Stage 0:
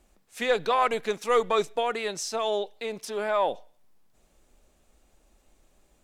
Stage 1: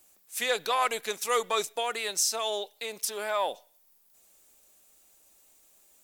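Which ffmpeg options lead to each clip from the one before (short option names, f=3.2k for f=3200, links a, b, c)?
-af "aemphasis=mode=production:type=riaa,volume=-3dB"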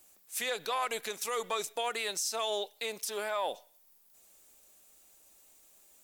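-af "alimiter=limit=-23.5dB:level=0:latency=1:release=85"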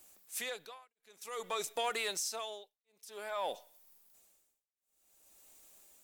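-filter_complex "[0:a]tremolo=f=0.53:d=1,asplit=2[a][b];[b]asoftclip=type=tanh:threshold=-32.5dB,volume=-3dB[c];[a][c]amix=inputs=2:normalize=0,volume=-4dB"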